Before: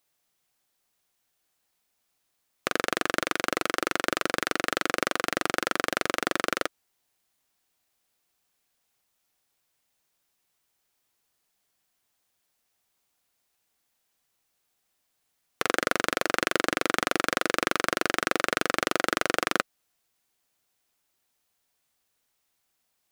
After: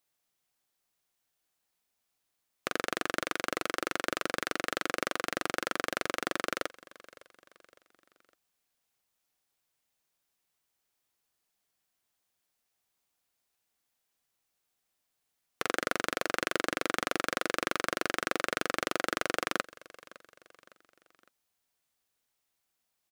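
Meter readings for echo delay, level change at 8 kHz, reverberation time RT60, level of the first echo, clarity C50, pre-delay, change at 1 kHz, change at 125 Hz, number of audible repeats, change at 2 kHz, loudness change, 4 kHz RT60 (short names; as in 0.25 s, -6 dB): 0.559 s, -5.5 dB, none, -21.0 dB, none, none, -5.5 dB, -5.5 dB, 3, -5.5 dB, -5.5 dB, none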